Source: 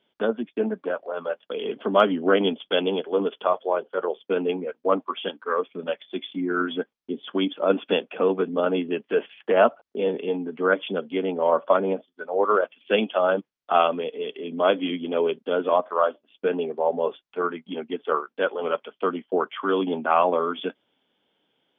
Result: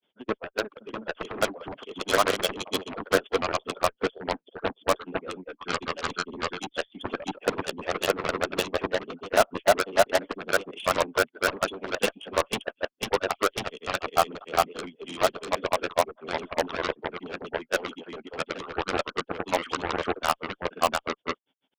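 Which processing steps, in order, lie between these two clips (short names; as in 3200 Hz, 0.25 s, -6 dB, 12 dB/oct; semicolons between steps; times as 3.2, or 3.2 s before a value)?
grains 0.1 s, grains 20/s, spray 0.91 s; harmonic-percussive split harmonic -13 dB; added harmonics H 3 -17 dB, 5 -22 dB, 6 -36 dB, 7 -11 dB, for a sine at -13.5 dBFS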